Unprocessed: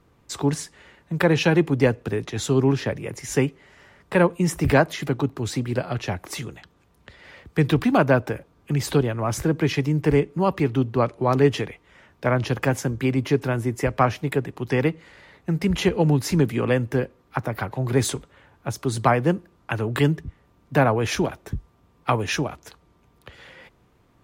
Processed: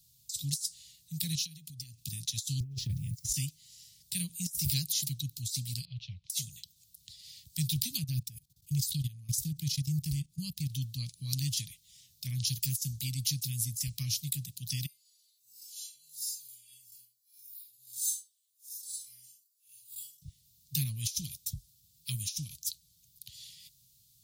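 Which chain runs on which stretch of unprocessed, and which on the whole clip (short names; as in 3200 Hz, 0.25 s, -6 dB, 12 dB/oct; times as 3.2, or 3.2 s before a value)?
1.35–2.05 compressor 20:1, threshold -30 dBFS + Butterworth band-stop 780 Hz, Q 0.57
2.6–3.34 gate -36 dBFS, range -20 dB + tilt -4 dB/oct + requantised 12-bit, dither none
5.85–6.3 LPF 2900 Hz 24 dB/oct + fixed phaser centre 640 Hz, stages 4
7.99–10.7 low shelf 340 Hz +7.5 dB + level quantiser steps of 18 dB
14.86–20.22 time blur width 0.123 s + differentiator + metallic resonator 120 Hz, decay 0.35 s, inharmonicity 0.008
whole clip: elliptic band-stop 140–4100 Hz, stop band 50 dB; RIAA curve recording; negative-ratio compressor -30 dBFS, ratio -0.5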